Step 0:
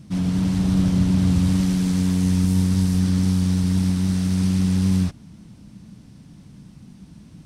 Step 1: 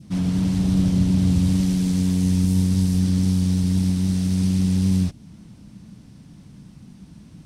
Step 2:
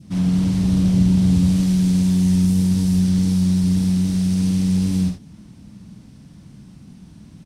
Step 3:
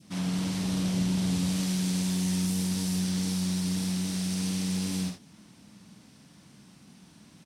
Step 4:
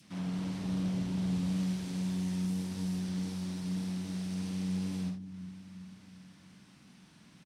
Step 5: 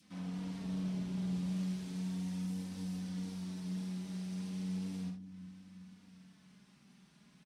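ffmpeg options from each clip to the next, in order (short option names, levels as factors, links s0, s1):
-af "adynamicequalizer=threshold=0.00398:dfrequency=1300:dqfactor=0.92:tfrequency=1300:tqfactor=0.92:attack=5:release=100:ratio=0.375:range=3.5:mode=cutabove:tftype=bell"
-af "aecho=1:1:49|77:0.531|0.282"
-af "highpass=f=700:p=1"
-filter_complex "[0:a]highshelf=f=3600:g=-12,acrossover=split=310|1300[s0][s1][s2];[s0]aecho=1:1:365|730|1095|1460|1825|2190:0.355|0.192|0.103|0.0559|0.0302|0.0163[s3];[s2]acompressor=mode=upward:threshold=0.00316:ratio=2.5[s4];[s3][s1][s4]amix=inputs=3:normalize=0,volume=0.531"
-af "flanger=delay=3.9:depth=1.1:regen=-26:speed=0.36:shape=sinusoidal,volume=0.75"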